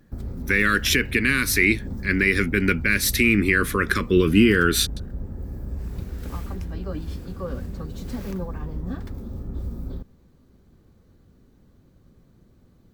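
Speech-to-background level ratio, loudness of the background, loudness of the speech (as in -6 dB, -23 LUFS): 14.0 dB, -34.0 LUFS, -20.0 LUFS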